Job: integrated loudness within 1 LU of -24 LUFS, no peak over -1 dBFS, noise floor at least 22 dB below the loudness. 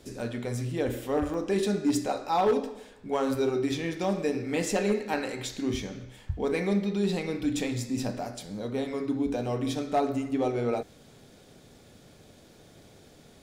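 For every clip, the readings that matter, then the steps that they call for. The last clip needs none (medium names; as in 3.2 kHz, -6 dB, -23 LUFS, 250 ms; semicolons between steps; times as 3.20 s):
clipped samples 0.3%; clipping level -18.5 dBFS; dropouts 2; longest dropout 1.3 ms; loudness -29.5 LUFS; peak level -18.5 dBFS; loudness target -24.0 LUFS
-> clip repair -18.5 dBFS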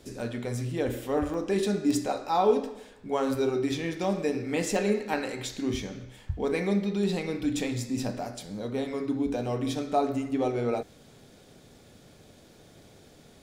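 clipped samples 0.0%; dropouts 2; longest dropout 1.3 ms
-> interpolate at 1.34/4.04 s, 1.3 ms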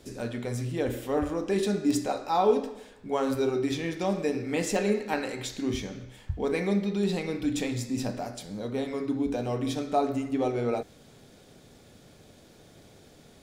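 dropouts 0; loudness -29.5 LUFS; peak level -11.5 dBFS; loudness target -24.0 LUFS
-> trim +5.5 dB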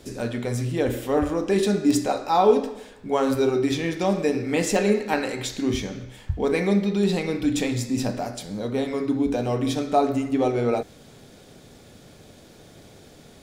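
loudness -24.0 LUFS; peak level -6.0 dBFS; noise floor -49 dBFS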